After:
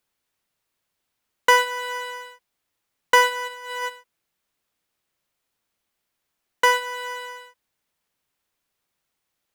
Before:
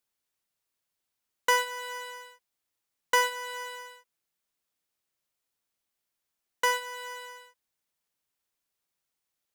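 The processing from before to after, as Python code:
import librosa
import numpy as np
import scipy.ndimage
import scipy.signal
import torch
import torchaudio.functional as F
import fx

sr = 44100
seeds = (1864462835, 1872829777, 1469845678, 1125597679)

y = fx.bass_treble(x, sr, bass_db=1, treble_db=-5)
y = fx.over_compress(y, sr, threshold_db=-44.0, ratio=-0.5, at=(3.47, 3.88), fade=0.02)
y = F.gain(torch.from_numpy(y), 8.5).numpy()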